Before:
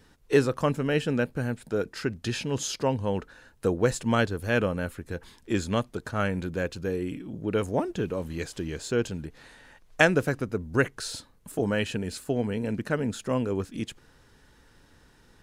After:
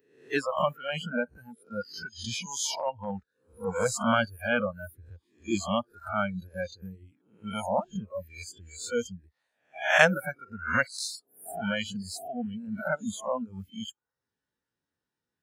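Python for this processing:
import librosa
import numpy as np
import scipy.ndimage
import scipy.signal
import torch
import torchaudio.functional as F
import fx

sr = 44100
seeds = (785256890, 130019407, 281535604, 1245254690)

y = fx.spec_swells(x, sr, rise_s=0.78)
y = fx.dereverb_blind(y, sr, rt60_s=0.59)
y = scipy.signal.sosfilt(scipy.signal.butter(2, 110.0, 'highpass', fs=sr, output='sos'), y)
y = fx.noise_reduce_blind(y, sr, reduce_db=29)
y = fx.transient(y, sr, attack_db=-7, sustain_db=-2, at=(2.71, 3.85), fade=0.02)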